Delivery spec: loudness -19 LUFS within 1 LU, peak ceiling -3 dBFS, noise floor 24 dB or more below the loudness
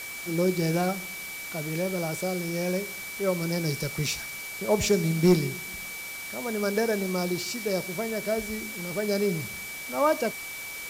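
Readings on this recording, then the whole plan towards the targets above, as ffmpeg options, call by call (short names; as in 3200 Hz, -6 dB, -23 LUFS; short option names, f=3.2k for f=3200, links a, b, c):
steady tone 2300 Hz; tone level -37 dBFS; noise floor -38 dBFS; noise floor target -52 dBFS; loudness -28.0 LUFS; peak -11.0 dBFS; loudness target -19.0 LUFS
-> -af "bandreject=f=2.3k:w=30"
-af "afftdn=nr=14:nf=-38"
-af "volume=9dB,alimiter=limit=-3dB:level=0:latency=1"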